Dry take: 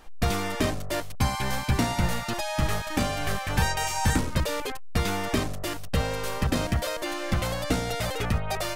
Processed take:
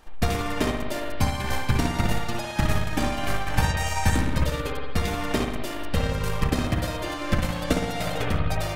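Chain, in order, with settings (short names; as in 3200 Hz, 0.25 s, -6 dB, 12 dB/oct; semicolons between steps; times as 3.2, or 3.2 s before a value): spring tank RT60 1.2 s, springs 58 ms, chirp 30 ms, DRR -0.5 dB; transient shaper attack +7 dB, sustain -5 dB; gain -2.5 dB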